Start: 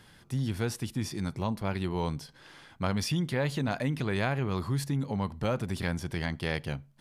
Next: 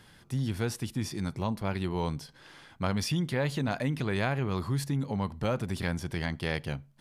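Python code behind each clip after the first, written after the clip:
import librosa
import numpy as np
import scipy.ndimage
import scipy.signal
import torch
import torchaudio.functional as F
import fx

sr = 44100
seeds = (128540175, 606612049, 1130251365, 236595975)

y = x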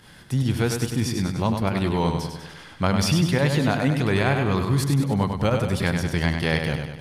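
y = fx.volume_shaper(x, sr, bpm=142, per_beat=1, depth_db=-9, release_ms=64.0, shape='fast start')
y = fx.echo_feedback(y, sr, ms=99, feedback_pct=53, wet_db=-6.0)
y = F.gain(torch.from_numpy(y), 8.0).numpy()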